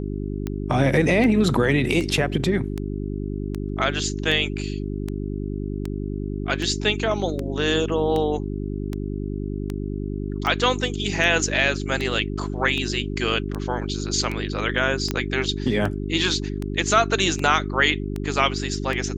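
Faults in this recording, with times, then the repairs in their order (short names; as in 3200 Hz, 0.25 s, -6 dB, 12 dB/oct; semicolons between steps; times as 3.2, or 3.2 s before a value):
hum 50 Hz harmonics 8 -28 dBFS
tick 78 rpm -15 dBFS
15.11 pop -9 dBFS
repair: de-click; de-hum 50 Hz, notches 8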